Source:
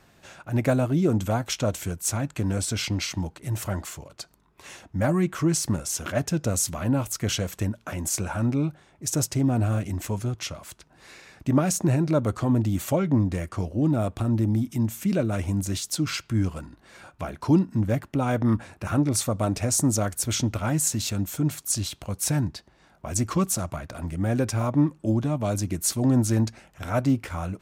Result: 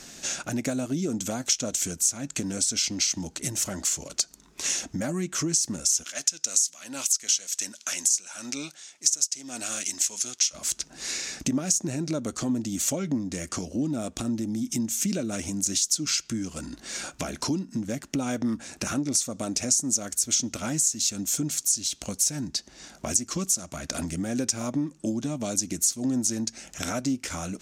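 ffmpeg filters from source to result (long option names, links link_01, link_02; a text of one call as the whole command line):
ffmpeg -i in.wav -filter_complex "[0:a]asplit=3[link_01][link_02][link_03];[link_01]afade=type=out:start_time=6.02:duration=0.02[link_04];[link_02]bandpass=frequency=5900:width_type=q:width=0.51,afade=type=in:start_time=6.02:duration=0.02,afade=type=out:start_time=10.53:duration=0.02[link_05];[link_03]afade=type=in:start_time=10.53:duration=0.02[link_06];[link_04][link_05][link_06]amix=inputs=3:normalize=0,equalizer=frequency=6500:width_type=o:width=2:gain=12,acompressor=threshold=-34dB:ratio=8,equalizer=frequency=100:width_type=o:width=0.67:gain=-12,equalizer=frequency=250:width_type=o:width=0.67:gain=6,equalizer=frequency=1000:width_type=o:width=0.67:gain=-5,equalizer=frequency=6300:width_type=o:width=0.67:gain=7,volume=7dB" out.wav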